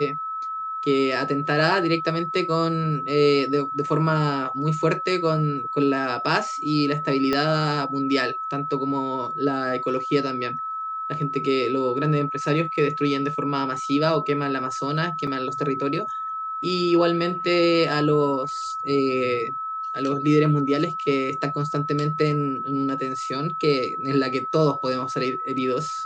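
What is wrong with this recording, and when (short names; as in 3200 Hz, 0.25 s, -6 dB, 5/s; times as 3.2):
tone 1300 Hz -27 dBFS
7.33 pop -10 dBFS
15.27 gap 4.8 ms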